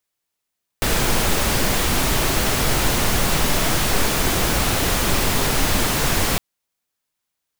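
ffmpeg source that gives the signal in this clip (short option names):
-f lavfi -i "anoisesrc=c=pink:a=0.61:d=5.56:r=44100:seed=1"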